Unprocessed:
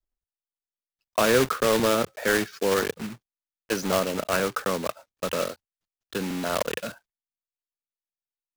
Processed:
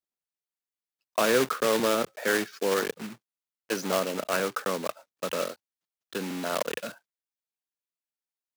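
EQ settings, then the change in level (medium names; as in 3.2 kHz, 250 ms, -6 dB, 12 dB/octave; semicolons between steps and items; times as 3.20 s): high-pass 180 Hz 12 dB/octave; -2.5 dB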